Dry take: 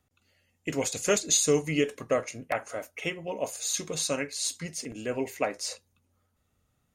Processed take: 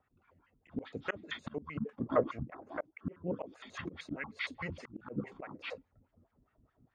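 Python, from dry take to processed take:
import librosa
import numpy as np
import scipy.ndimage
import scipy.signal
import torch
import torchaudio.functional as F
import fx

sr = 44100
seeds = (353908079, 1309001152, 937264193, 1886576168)

y = fx.pitch_trill(x, sr, semitones=-11.5, every_ms=77)
y = fx.rider(y, sr, range_db=10, speed_s=2.0)
y = fx.riaa(y, sr, side='playback')
y = fx.wah_lfo(y, sr, hz=4.8, low_hz=230.0, high_hz=1800.0, q=2.3)
y = fx.auto_swell(y, sr, attack_ms=432.0)
y = F.gain(torch.from_numpy(y), 8.0).numpy()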